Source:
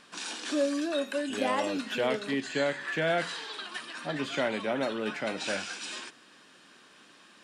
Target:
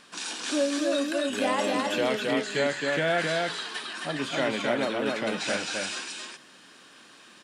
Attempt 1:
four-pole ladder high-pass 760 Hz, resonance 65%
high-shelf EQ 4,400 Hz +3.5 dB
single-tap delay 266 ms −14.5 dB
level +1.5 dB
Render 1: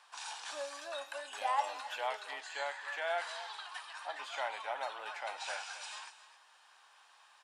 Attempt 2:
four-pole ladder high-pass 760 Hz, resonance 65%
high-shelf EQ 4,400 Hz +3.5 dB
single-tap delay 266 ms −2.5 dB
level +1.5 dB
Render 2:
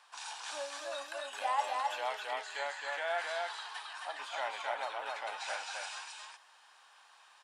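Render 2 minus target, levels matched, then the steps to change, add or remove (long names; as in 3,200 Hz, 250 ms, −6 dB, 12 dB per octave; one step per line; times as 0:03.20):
1,000 Hz band +7.0 dB
remove: four-pole ladder high-pass 760 Hz, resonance 65%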